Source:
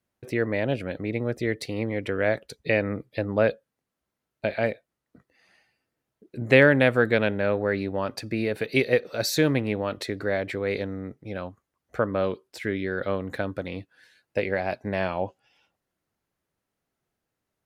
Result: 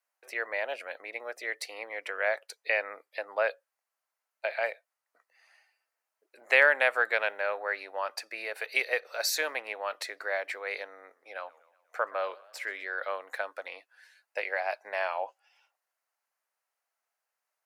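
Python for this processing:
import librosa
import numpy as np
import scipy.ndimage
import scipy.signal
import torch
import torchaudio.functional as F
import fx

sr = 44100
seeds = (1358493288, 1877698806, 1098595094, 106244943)

y = scipy.signal.sosfilt(scipy.signal.butter(4, 680.0, 'highpass', fs=sr, output='sos'), x)
y = fx.peak_eq(y, sr, hz=3500.0, db=-6.5, octaves=0.45)
y = fx.echo_warbled(y, sr, ms=124, feedback_pct=56, rate_hz=2.8, cents=181, wet_db=-22, at=(10.85, 12.85))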